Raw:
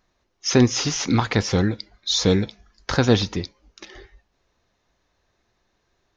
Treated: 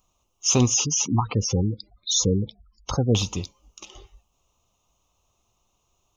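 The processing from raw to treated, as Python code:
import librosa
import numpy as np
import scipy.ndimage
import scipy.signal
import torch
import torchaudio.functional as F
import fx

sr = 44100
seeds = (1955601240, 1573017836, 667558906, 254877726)

y = fx.spec_gate(x, sr, threshold_db=-15, keep='strong', at=(0.74, 3.15))
y = fx.curve_eq(y, sr, hz=(110.0, 350.0, 560.0, 1200.0, 1700.0, 2800.0, 4500.0, 6800.0), db=(0, -7, -4, 2, -27, 5, -8, 11))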